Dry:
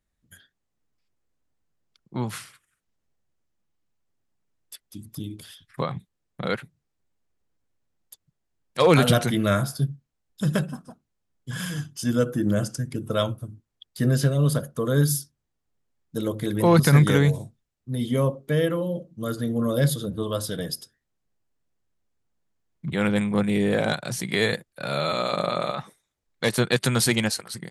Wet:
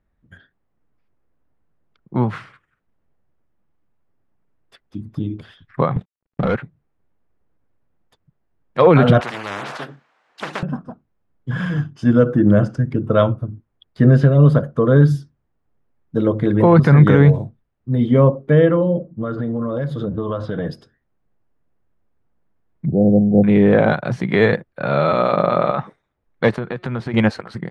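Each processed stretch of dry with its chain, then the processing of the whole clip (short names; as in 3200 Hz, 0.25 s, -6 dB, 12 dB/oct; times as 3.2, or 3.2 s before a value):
5.96–6.56 CVSD 64 kbps + sample leveller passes 3 + compressor 10:1, threshold -25 dBFS
9.2–10.63 HPF 960 Hz + spectral compressor 10:1
18.98–20.66 low-pass opened by the level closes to 1400 Hz, open at -18.5 dBFS + dynamic EQ 1100 Hz, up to +4 dB, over -39 dBFS, Q 1 + compressor 12:1, threshold -28 dBFS
22.86–23.44 brick-wall FIR band-stop 800–4200 Hz + high shelf 2600 Hz -8.5 dB
26.56–27.14 high shelf 4800 Hz -9 dB + compressor 12:1, threshold -25 dBFS + resonator 180 Hz, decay 1.4 s, mix 40%
whole clip: LPF 1600 Hz 12 dB/oct; maximiser +11 dB; gain -1 dB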